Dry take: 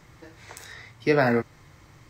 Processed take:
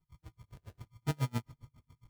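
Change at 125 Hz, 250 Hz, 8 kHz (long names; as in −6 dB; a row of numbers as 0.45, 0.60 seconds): −3.0 dB, −14.5 dB, can't be measured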